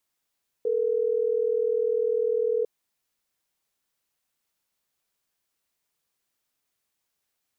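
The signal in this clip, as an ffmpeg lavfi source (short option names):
-f lavfi -i "aevalsrc='0.0596*(sin(2*PI*440*t)+sin(2*PI*480*t))*clip(min(mod(t,6),2-mod(t,6))/0.005,0,1)':d=3.12:s=44100"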